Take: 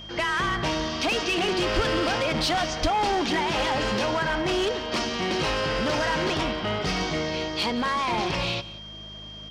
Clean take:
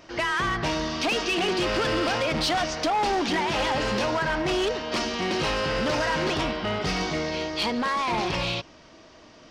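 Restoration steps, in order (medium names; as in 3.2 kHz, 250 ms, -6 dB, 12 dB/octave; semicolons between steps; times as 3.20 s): de-hum 52.3 Hz, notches 4; band-stop 3.2 kHz, Q 30; 1.75–1.87 s: high-pass 140 Hz 24 dB/octave; 2.81–2.93 s: high-pass 140 Hz 24 dB/octave; inverse comb 180 ms -19 dB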